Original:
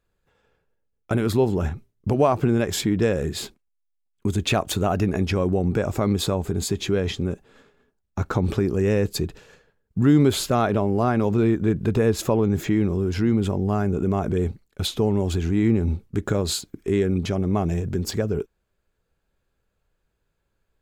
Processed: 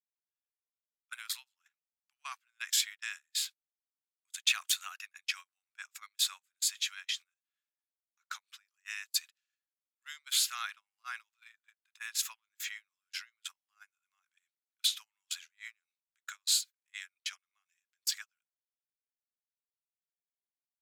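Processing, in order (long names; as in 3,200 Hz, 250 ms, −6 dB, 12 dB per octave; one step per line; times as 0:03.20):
Bessel high-pass filter 2,400 Hz, order 8
noise gate −41 dBFS, range −32 dB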